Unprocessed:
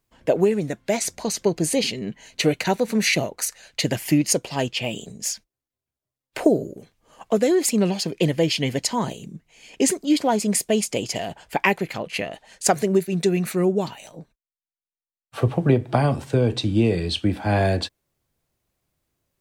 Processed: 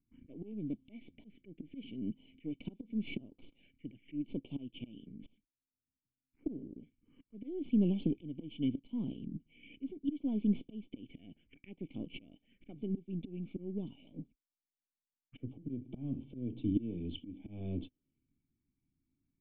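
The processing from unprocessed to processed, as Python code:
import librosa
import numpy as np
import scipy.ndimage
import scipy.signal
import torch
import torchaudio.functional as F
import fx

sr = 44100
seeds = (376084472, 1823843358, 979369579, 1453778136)

y = np.where(x < 0.0, 10.0 ** (-7.0 / 20.0) * x, x)
y = fx.high_shelf(y, sr, hz=3200.0, db=-7.5)
y = fx.auto_swell(y, sr, attack_ms=787.0)
y = fx.env_phaser(y, sr, low_hz=530.0, high_hz=1800.0, full_db=-41.5)
y = fx.formant_cascade(y, sr, vowel='i')
y = y * librosa.db_to_amplitude(9.0)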